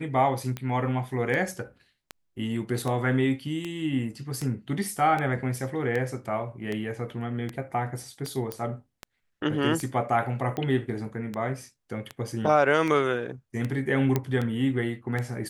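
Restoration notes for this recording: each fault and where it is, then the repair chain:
tick 78 rpm -18 dBFS
8.52 s: pop -16 dBFS
14.16 s: pop -11 dBFS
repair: de-click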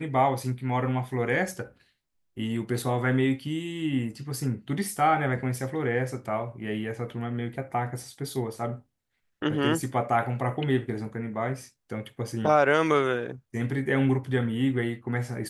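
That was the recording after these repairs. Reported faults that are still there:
nothing left

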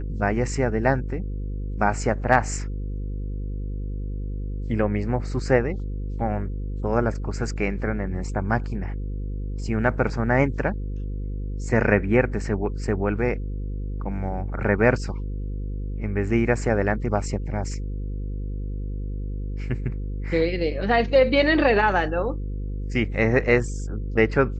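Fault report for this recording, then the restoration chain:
buzz 50 Hz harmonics 10 -29 dBFS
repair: de-hum 50 Hz, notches 10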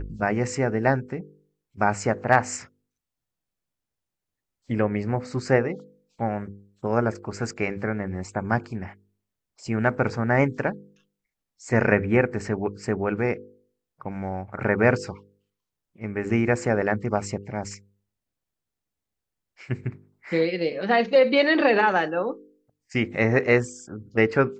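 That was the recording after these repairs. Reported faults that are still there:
nothing left

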